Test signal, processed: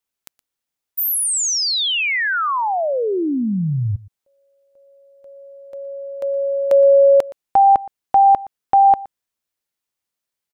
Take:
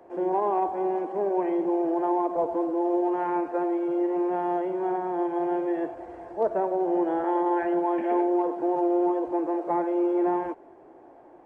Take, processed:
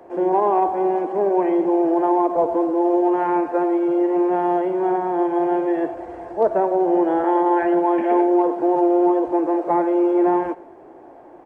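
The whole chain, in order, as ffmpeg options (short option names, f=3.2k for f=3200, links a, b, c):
-af "aecho=1:1:119:0.1,volume=7dB"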